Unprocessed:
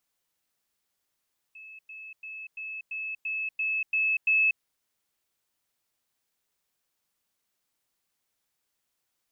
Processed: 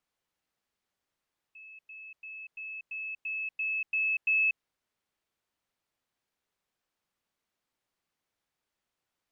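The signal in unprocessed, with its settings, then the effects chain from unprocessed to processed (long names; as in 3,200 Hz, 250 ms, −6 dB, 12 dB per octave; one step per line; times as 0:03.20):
level staircase 2,600 Hz −43.5 dBFS, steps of 3 dB, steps 9, 0.24 s 0.10 s
low-pass filter 2,600 Hz 6 dB per octave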